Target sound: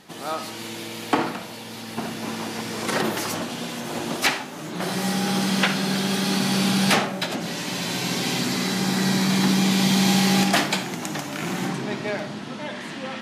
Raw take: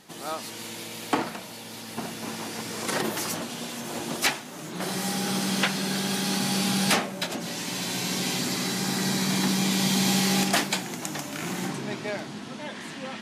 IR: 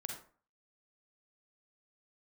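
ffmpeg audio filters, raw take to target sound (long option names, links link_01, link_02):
-filter_complex "[0:a]asplit=2[link_01][link_02];[1:a]atrim=start_sample=2205,asetrate=38367,aresample=44100,lowpass=5800[link_03];[link_02][link_03]afir=irnorm=-1:irlink=0,volume=-1.5dB[link_04];[link_01][link_04]amix=inputs=2:normalize=0"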